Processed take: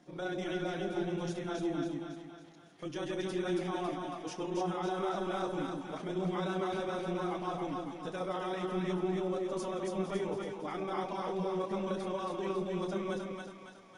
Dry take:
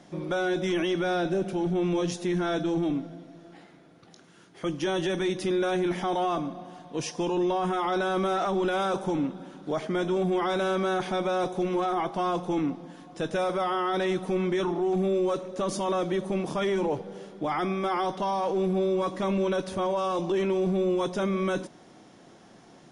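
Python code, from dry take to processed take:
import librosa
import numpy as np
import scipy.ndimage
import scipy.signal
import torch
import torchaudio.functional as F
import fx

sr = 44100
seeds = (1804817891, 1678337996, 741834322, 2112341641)

y = fx.chorus_voices(x, sr, voices=4, hz=0.35, base_ms=30, depth_ms=3.4, mix_pct=40)
y = fx.stretch_grains(y, sr, factor=0.61, grain_ms=66.0)
y = fx.echo_split(y, sr, split_hz=710.0, low_ms=156, high_ms=277, feedback_pct=52, wet_db=-3)
y = y * 10.0 ** (-6.5 / 20.0)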